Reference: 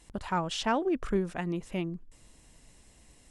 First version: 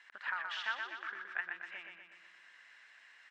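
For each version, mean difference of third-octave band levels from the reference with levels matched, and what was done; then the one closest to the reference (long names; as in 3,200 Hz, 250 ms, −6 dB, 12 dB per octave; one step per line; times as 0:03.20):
12.0 dB: downward compressor, threshold −39 dBFS, peak gain reduction 15 dB
four-pole ladder band-pass 1,800 Hz, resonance 65%
high-frequency loss of the air 81 metres
repeating echo 123 ms, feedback 58%, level −5 dB
level +16.5 dB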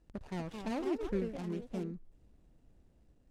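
7.0 dB: running median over 41 samples
low-pass filter 9,300 Hz 12 dB per octave
high-shelf EQ 4,800 Hz +5.5 dB
delay with pitch and tempo change per echo 269 ms, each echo +3 semitones, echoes 2, each echo −6 dB
level −6 dB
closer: second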